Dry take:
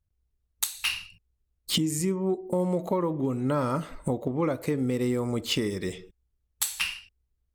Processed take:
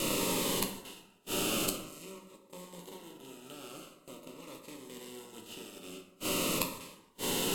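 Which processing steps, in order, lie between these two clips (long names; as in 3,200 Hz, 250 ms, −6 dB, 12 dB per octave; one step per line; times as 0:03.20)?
compressor on every frequency bin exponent 0.2
gate with flip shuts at −15 dBFS, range −25 dB
in parallel at −7 dB: dead-zone distortion −52 dBFS
on the sum: flanger 1.3 Hz, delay 8.8 ms, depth 3.5 ms, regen +51%
noise gate −46 dBFS, range −16 dB
parametric band 77 Hz −10 dB 2.1 octaves
mains-hum notches 60/120 Hz
dense smooth reverb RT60 0.93 s, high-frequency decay 0.5×, pre-delay 0 ms, DRR 3.5 dB
phaser whose notches keep moving one way falling 0.46 Hz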